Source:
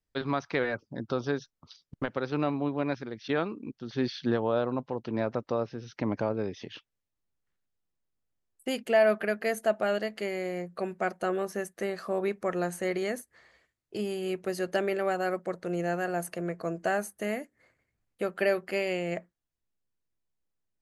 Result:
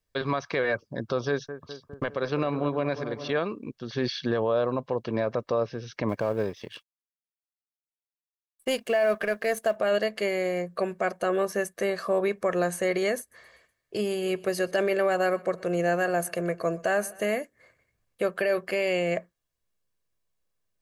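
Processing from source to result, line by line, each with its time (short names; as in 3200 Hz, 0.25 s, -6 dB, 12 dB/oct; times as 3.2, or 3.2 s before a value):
1.28–3.4 analogue delay 0.204 s, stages 2048, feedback 66%, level -13 dB
6.09–9.76 G.711 law mismatch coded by A
13.19–17.35 feedback echo 0.124 s, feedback 56%, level -23.5 dB
whole clip: low shelf 140 Hz -4.5 dB; comb 1.8 ms, depth 37%; limiter -21.5 dBFS; gain +5.5 dB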